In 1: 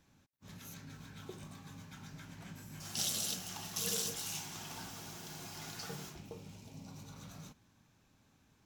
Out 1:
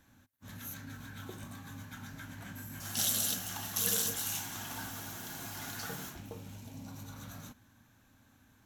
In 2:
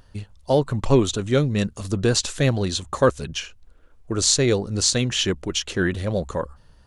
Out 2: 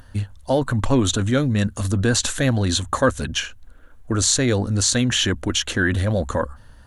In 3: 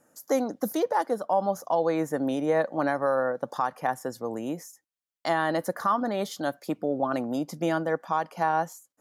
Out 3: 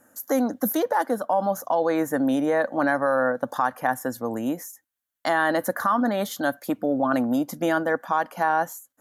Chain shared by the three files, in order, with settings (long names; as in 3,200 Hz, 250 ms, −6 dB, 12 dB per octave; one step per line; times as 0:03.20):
thirty-one-band graphic EQ 100 Hz +4 dB, 160 Hz −8 dB, 250 Hz +5 dB, 400 Hz −7 dB, 1,600 Hz +6 dB, 2,500 Hz −3 dB, 5,000 Hz −6 dB, 12,500 Hz +9 dB
in parallel at −2 dB: compressor whose output falls as the input rises −26 dBFS, ratio −1
on the sum: level −1 dB